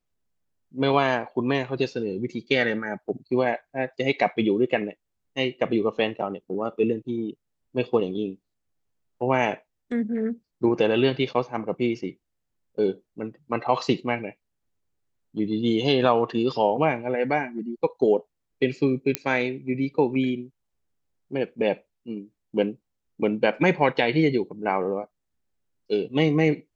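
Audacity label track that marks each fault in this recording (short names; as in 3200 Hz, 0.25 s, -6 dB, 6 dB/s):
19.150000	19.150000	pop -6 dBFS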